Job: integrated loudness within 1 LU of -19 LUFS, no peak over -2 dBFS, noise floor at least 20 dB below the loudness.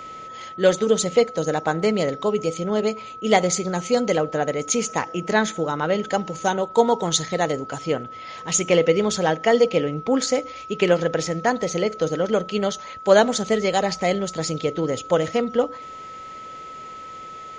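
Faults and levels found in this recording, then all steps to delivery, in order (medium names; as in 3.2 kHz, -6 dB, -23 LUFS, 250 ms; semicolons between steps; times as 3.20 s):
steady tone 1.3 kHz; tone level -35 dBFS; loudness -22.0 LUFS; peak level -2.0 dBFS; loudness target -19.0 LUFS
-> band-stop 1.3 kHz, Q 30; trim +3 dB; peak limiter -2 dBFS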